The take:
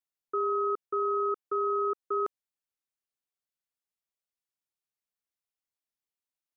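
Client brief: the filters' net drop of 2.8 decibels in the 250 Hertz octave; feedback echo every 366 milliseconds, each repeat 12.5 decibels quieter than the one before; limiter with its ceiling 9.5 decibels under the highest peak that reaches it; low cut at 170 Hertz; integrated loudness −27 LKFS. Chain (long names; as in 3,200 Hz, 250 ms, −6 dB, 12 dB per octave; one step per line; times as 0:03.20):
high-pass filter 170 Hz
parametric band 250 Hz −7.5 dB
brickwall limiter −33 dBFS
repeating echo 366 ms, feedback 24%, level −12.5 dB
level +13 dB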